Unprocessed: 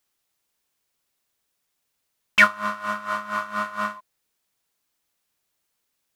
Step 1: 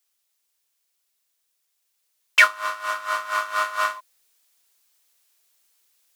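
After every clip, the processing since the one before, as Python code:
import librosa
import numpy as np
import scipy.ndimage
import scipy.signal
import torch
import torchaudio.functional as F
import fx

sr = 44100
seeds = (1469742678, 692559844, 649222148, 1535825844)

y = scipy.signal.sosfilt(scipy.signal.butter(8, 320.0, 'highpass', fs=sr, output='sos'), x)
y = fx.high_shelf(y, sr, hz=2200.0, db=10.0)
y = fx.rider(y, sr, range_db=4, speed_s=2.0)
y = F.gain(torch.from_numpy(y), -2.5).numpy()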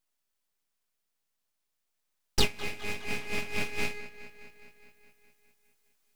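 y = x + 0.46 * np.pad(x, (int(4.7 * sr / 1000.0), 0))[:len(x)]
y = fx.echo_wet_lowpass(y, sr, ms=207, feedback_pct=67, hz=1700.0, wet_db=-15)
y = np.abs(y)
y = F.gain(torch.from_numpy(y), -8.0).numpy()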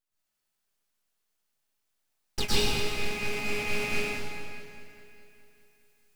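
y = fx.rev_plate(x, sr, seeds[0], rt60_s=2.2, hf_ratio=0.85, predelay_ms=95, drr_db=-9.5)
y = F.gain(torch.from_numpy(y), -6.5).numpy()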